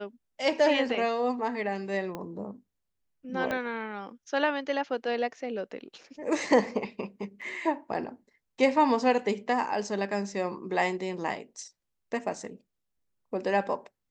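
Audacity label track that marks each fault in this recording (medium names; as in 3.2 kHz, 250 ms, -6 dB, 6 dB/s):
2.150000	2.150000	pop -22 dBFS
3.510000	3.510000	pop -18 dBFS
7.410000	7.420000	dropout 6.1 ms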